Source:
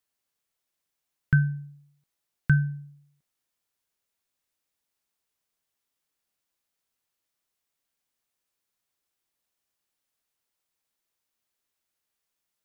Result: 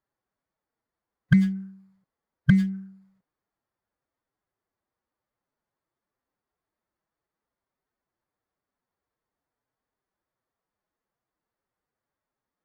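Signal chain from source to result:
adaptive Wiener filter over 15 samples
phase-vocoder pitch shift with formants kept +5 semitones
windowed peak hold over 5 samples
level +6.5 dB

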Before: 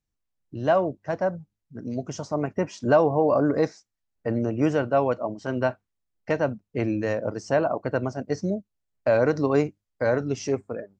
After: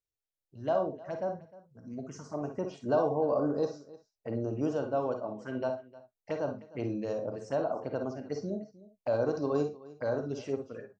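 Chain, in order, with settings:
low-shelf EQ 120 Hz −9 dB
phaser swept by the level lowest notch 210 Hz, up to 2,100 Hz, full sweep at −23.5 dBFS
multi-tap delay 51/62/307 ms −13/−15/−19.5 dB
reverb whose tail is shaped and stops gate 80 ms rising, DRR 6.5 dB
level −7.5 dB

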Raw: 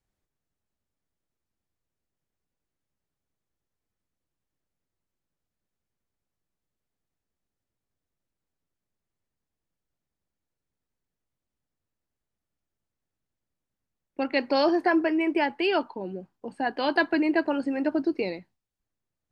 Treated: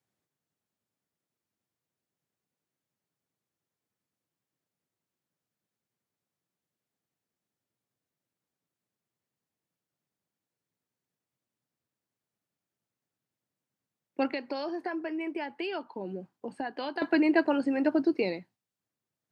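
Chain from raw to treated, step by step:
high-pass filter 110 Hz 24 dB per octave
0:14.31–0:17.02: downward compressor, threshold −32 dBFS, peak gain reduction 14 dB

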